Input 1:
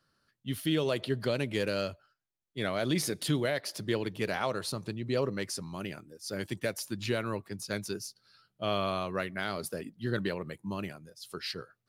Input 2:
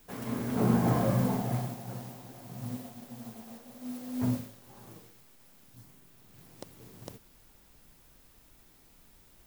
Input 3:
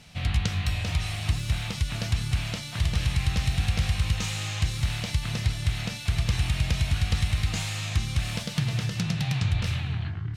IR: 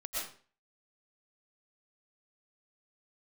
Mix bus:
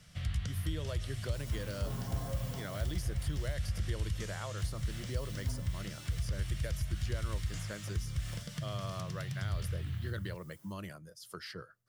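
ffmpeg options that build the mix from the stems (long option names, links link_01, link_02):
-filter_complex "[0:a]volume=1dB[link_01];[1:a]highpass=frequency=130:width=0.5412,highpass=frequency=130:width=1.3066,aecho=1:1:7.4:0.99,adelay=1250,volume=-5dB,asplit=3[link_02][link_03][link_04];[link_02]atrim=end=3.54,asetpts=PTS-STARTPTS,afade=type=out:start_time=3.536:duration=0.004:curve=hsin[link_05];[link_03]atrim=start=3.54:end=4.58,asetpts=PTS-STARTPTS,volume=0[link_06];[link_04]atrim=start=4.58,asetpts=PTS-STARTPTS,afade=type=in:duration=0.004:curve=hsin[link_07];[link_05][link_06][link_07]concat=n=3:v=0:a=1[link_08];[2:a]equalizer=frequency=860:width_type=o:width=0.69:gain=-7.5,bandreject=frequency=6500:width=29,volume=-4.5dB[link_09];[link_01][link_08][link_09]amix=inputs=3:normalize=0,equalizer=frequency=250:width_type=o:width=0.33:gain=-11,equalizer=frequency=400:width_type=o:width=0.33:gain=-6,equalizer=frequency=800:width_type=o:width=0.33:gain=-6,equalizer=frequency=2500:width_type=o:width=0.33:gain=-10,equalizer=frequency=4000:width_type=o:width=0.33:gain=-8,acrossover=split=90|2600[link_10][link_11][link_12];[link_10]acompressor=threshold=-32dB:ratio=4[link_13];[link_11]acompressor=threshold=-41dB:ratio=4[link_14];[link_12]acompressor=threshold=-49dB:ratio=4[link_15];[link_13][link_14][link_15]amix=inputs=3:normalize=0"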